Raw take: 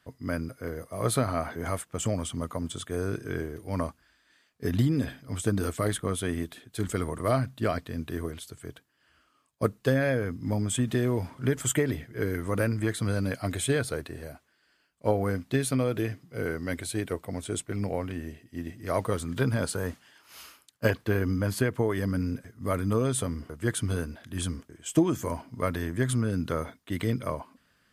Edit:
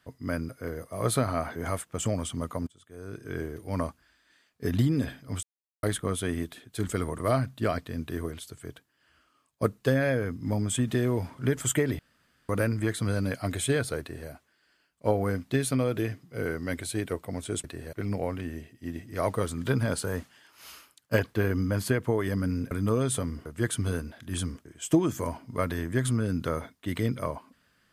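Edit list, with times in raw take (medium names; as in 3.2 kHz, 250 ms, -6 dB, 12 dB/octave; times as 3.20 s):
2.67–3.45 s: fade in quadratic, from -23.5 dB
5.43–5.83 s: mute
11.99–12.49 s: room tone
14.00–14.29 s: copy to 17.64 s
22.42–22.75 s: delete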